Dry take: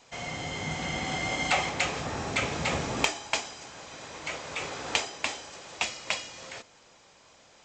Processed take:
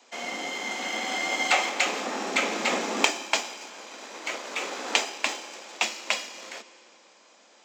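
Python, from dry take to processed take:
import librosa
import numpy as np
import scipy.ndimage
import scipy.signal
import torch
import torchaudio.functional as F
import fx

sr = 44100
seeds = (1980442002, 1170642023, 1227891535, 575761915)

p1 = fx.low_shelf(x, sr, hz=340.0, db=-7.5, at=(0.49, 1.86))
p2 = fx.rev_fdn(p1, sr, rt60_s=2.5, lf_ratio=0.8, hf_ratio=0.95, size_ms=17.0, drr_db=11.0)
p3 = np.sign(p2) * np.maximum(np.abs(p2) - 10.0 ** (-40.5 / 20.0), 0.0)
p4 = p2 + (p3 * librosa.db_to_amplitude(-4.0))
y = scipy.signal.sosfilt(scipy.signal.butter(12, 200.0, 'highpass', fs=sr, output='sos'), p4)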